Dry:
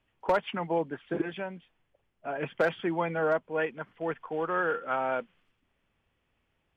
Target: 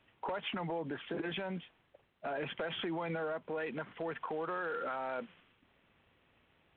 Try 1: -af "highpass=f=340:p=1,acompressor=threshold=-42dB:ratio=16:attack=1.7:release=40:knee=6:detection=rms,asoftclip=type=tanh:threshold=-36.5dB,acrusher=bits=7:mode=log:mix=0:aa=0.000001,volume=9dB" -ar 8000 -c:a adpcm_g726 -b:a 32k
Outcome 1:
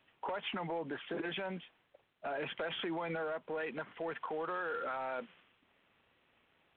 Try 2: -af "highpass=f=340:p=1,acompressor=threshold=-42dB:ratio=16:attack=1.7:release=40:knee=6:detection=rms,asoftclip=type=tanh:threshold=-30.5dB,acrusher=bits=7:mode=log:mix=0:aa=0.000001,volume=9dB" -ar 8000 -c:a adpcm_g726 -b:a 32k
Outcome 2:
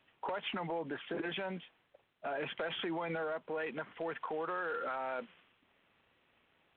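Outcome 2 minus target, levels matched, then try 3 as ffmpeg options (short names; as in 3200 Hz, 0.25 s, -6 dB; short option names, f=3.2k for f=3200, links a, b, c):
125 Hz band -3.5 dB
-af "highpass=f=110:p=1,acompressor=threshold=-42dB:ratio=16:attack=1.7:release=40:knee=6:detection=rms,asoftclip=type=tanh:threshold=-30.5dB,acrusher=bits=7:mode=log:mix=0:aa=0.000001,volume=9dB" -ar 8000 -c:a adpcm_g726 -b:a 32k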